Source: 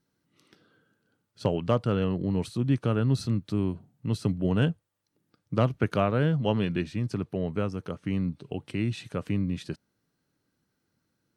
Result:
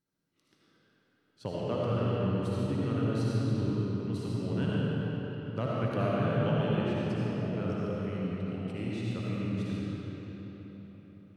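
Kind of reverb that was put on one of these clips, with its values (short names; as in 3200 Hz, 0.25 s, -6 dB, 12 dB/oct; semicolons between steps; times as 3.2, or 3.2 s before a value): digital reverb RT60 4.6 s, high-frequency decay 0.7×, pre-delay 35 ms, DRR -7 dB; gain -11 dB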